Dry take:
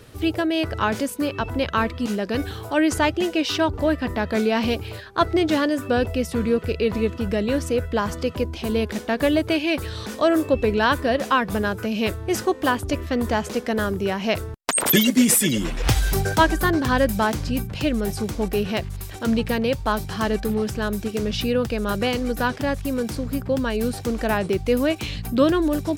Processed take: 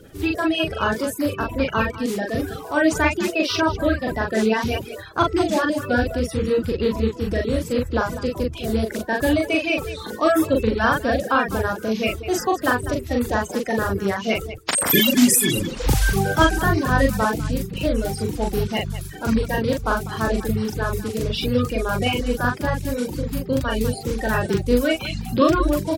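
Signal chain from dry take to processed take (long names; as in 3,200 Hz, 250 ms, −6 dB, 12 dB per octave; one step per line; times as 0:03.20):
spectral magnitudes quantised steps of 30 dB
loudspeakers that aren't time-aligned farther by 14 metres −2 dB, 68 metres −11 dB
reverb reduction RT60 0.54 s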